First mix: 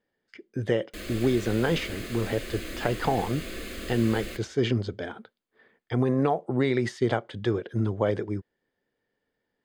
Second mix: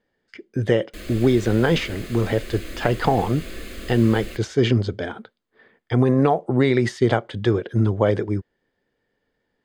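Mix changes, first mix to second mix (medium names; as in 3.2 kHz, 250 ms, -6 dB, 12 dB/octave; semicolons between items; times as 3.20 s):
speech +6.0 dB; master: add bass shelf 73 Hz +6.5 dB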